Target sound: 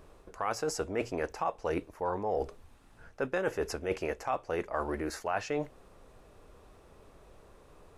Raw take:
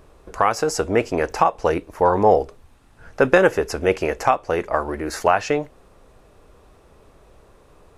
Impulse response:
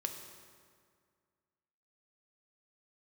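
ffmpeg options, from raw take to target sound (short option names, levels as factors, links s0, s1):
-af "bandreject=f=60:t=h:w=6,bandreject=f=120:t=h:w=6,areverse,acompressor=threshold=0.0631:ratio=6,areverse,volume=0.562"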